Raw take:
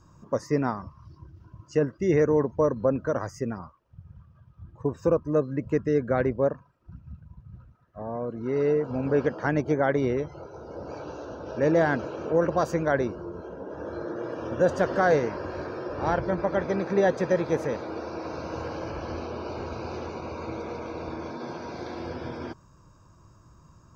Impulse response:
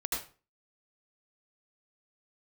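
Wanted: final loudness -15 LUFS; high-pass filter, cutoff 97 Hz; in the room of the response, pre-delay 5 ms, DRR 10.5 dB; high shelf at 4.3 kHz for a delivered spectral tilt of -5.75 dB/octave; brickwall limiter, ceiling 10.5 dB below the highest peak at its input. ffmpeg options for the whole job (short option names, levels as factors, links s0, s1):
-filter_complex "[0:a]highpass=97,highshelf=f=4300:g=9,alimiter=limit=0.1:level=0:latency=1,asplit=2[s0][s1];[1:a]atrim=start_sample=2205,adelay=5[s2];[s1][s2]afir=irnorm=-1:irlink=0,volume=0.178[s3];[s0][s3]amix=inputs=2:normalize=0,volume=7.08"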